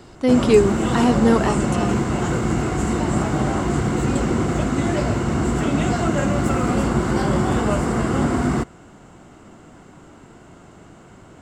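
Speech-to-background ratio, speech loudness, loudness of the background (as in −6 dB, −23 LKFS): 2.0 dB, −19.0 LKFS, −21.0 LKFS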